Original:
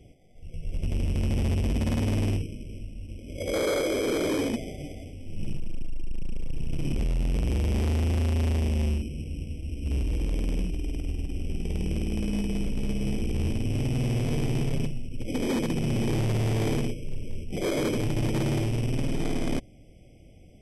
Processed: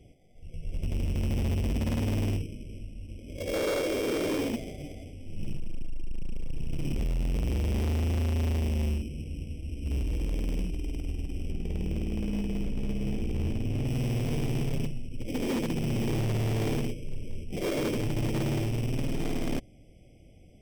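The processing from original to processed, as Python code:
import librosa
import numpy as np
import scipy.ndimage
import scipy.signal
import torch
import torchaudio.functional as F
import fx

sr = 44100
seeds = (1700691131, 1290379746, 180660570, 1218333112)

y = fx.tracing_dist(x, sr, depth_ms=0.12)
y = fx.high_shelf(y, sr, hz=3500.0, db=-7.0, at=(11.51, 13.87))
y = F.gain(torch.from_numpy(y), -2.5).numpy()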